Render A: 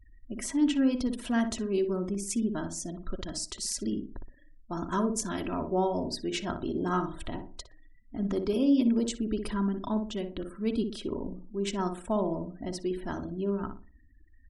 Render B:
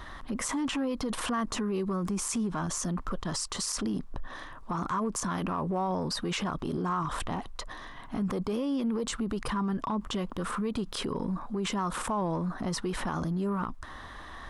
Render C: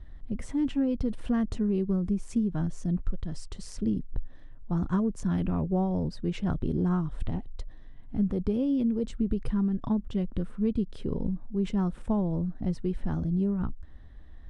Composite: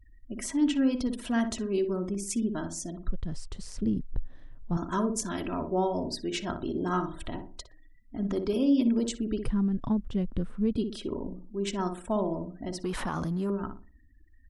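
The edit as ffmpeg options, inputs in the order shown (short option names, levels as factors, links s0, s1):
-filter_complex "[2:a]asplit=2[s0][s1];[0:a]asplit=4[s2][s3][s4][s5];[s2]atrim=end=3.082[s6];[s0]atrim=start=3.078:end=4.772[s7];[s3]atrim=start=4.768:end=9.462[s8];[s1]atrim=start=9.458:end=10.762[s9];[s4]atrim=start=10.758:end=12.842[s10];[1:a]atrim=start=12.838:end=13.502[s11];[s5]atrim=start=13.498[s12];[s6][s7]acrossfade=d=0.004:c1=hsin:c2=hsin[s13];[s13][s8]acrossfade=d=0.004:c1=hsin:c2=hsin[s14];[s14][s9]acrossfade=d=0.004:c1=hsin:c2=hsin[s15];[s15][s10]acrossfade=d=0.004:c1=hsin:c2=hsin[s16];[s16][s11]acrossfade=d=0.004:c1=hsin:c2=hsin[s17];[s17][s12]acrossfade=d=0.004:c1=hsin:c2=hsin"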